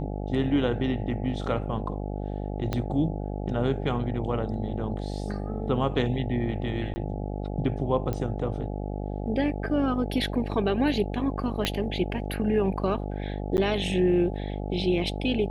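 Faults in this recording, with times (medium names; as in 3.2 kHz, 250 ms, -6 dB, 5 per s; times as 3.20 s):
buzz 50 Hz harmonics 17 -32 dBFS
2.73 s: pop -14 dBFS
6.94–6.96 s: dropout 20 ms
8.13 s: pop -18 dBFS
11.65 s: pop -10 dBFS
13.57–13.58 s: dropout 9.8 ms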